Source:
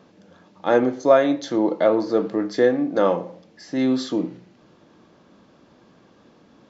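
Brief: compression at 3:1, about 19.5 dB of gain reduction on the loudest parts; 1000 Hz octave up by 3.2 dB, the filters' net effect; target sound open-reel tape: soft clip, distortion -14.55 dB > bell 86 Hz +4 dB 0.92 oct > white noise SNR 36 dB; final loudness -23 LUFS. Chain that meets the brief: bell 1000 Hz +4.5 dB; compressor 3:1, threshold -35 dBFS; soft clip -27.5 dBFS; bell 86 Hz +4 dB 0.92 oct; white noise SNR 36 dB; gain +14 dB

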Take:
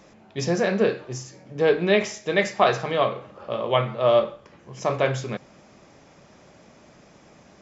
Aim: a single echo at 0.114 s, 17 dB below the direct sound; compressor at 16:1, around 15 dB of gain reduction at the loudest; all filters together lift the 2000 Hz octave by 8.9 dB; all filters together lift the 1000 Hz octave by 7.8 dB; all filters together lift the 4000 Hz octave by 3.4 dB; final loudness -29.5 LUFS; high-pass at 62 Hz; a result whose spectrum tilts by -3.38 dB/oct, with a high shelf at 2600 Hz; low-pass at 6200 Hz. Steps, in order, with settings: HPF 62 Hz; LPF 6200 Hz; bell 1000 Hz +8.5 dB; bell 2000 Hz +9 dB; high shelf 2600 Hz -4 dB; bell 4000 Hz +4 dB; compressor 16:1, threshold -21 dBFS; echo 0.114 s -17 dB; gain -1.5 dB

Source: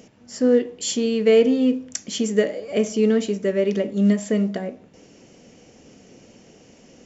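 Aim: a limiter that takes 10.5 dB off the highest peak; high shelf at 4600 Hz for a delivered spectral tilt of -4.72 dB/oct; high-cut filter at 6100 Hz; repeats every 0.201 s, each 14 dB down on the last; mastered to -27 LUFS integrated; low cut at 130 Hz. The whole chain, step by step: HPF 130 Hz; LPF 6100 Hz; high shelf 4600 Hz +4.5 dB; limiter -16.5 dBFS; feedback echo 0.201 s, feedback 20%, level -14 dB; gain -1.5 dB

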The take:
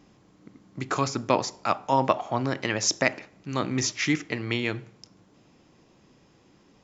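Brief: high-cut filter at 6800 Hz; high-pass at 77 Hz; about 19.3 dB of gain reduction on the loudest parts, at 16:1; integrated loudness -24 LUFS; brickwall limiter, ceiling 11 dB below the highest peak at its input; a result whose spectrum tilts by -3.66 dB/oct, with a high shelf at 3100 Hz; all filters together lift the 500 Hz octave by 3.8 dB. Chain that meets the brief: HPF 77 Hz; LPF 6800 Hz; bell 500 Hz +4.5 dB; high shelf 3100 Hz +7 dB; compressor 16:1, threshold -33 dBFS; gain +17 dB; limiter -10.5 dBFS

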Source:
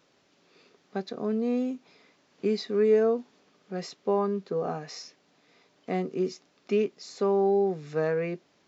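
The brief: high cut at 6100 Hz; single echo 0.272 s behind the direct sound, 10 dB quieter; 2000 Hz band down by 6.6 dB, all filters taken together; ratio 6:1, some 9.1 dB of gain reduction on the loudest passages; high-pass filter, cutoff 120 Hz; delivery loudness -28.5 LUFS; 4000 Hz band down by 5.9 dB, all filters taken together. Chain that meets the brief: HPF 120 Hz; LPF 6100 Hz; bell 2000 Hz -7.5 dB; bell 4000 Hz -4.5 dB; compressor 6:1, threshold -27 dBFS; echo 0.272 s -10 dB; gain +5 dB

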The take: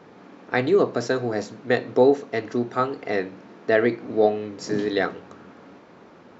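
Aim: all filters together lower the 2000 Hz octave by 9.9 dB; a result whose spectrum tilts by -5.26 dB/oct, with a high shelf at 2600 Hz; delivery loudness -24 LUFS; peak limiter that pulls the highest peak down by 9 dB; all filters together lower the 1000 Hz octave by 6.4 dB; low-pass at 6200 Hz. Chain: LPF 6200 Hz; bell 1000 Hz -7.5 dB; bell 2000 Hz -6 dB; high shelf 2600 Hz -8.5 dB; gain +5 dB; limiter -11.5 dBFS

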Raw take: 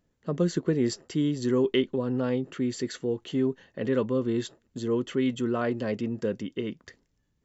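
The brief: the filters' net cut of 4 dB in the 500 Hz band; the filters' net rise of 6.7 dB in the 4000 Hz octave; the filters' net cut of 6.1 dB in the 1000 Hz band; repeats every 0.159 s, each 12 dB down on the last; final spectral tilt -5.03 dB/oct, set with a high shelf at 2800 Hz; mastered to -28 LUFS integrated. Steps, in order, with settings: bell 500 Hz -4 dB; bell 1000 Hz -8.5 dB; high shelf 2800 Hz +5 dB; bell 4000 Hz +5.5 dB; feedback echo 0.159 s, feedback 25%, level -12 dB; gain +2 dB

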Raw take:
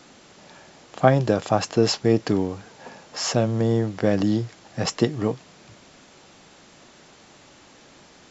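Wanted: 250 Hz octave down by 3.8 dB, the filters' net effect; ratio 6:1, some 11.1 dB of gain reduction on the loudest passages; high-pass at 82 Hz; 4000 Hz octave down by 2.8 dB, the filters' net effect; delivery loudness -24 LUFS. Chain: HPF 82 Hz; bell 250 Hz -5 dB; bell 4000 Hz -4 dB; compressor 6:1, threshold -24 dBFS; gain +7 dB

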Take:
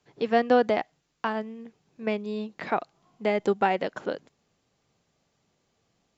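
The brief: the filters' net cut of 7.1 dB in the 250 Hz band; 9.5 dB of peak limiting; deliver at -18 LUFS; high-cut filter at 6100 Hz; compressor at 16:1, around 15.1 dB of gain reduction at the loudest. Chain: LPF 6100 Hz; bell 250 Hz -8.5 dB; compressor 16:1, threshold -32 dBFS; gain +23.5 dB; limiter -4 dBFS

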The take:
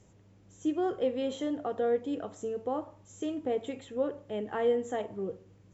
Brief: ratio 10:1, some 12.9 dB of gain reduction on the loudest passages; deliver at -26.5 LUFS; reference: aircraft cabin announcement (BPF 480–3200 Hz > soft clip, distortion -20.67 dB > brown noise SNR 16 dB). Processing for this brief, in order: compressor 10:1, threshold -37 dBFS; BPF 480–3200 Hz; soft clip -35 dBFS; brown noise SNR 16 dB; gain +20.5 dB

